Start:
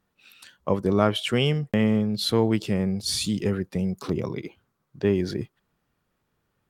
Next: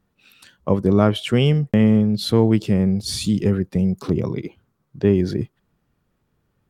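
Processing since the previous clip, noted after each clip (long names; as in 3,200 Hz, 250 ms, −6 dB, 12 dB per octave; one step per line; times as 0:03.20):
low-shelf EQ 430 Hz +8.5 dB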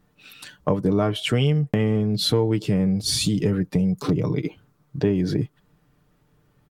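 comb filter 6.7 ms, depth 53%
downward compressor 3 to 1, threshold −26 dBFS, peak gain reduction 12.5 dB
level +5.5 dB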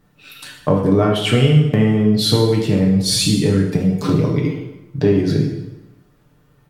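dense smooth reverb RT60 1 s, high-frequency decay 0.85×, DRR 0 dB
level +3.5 dB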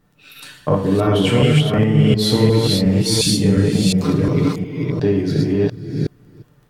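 delay that plays each chunk backwards 357 ms, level −0.5 dB
surface crackle 16 per second −44 dBFS
level −2.5 dB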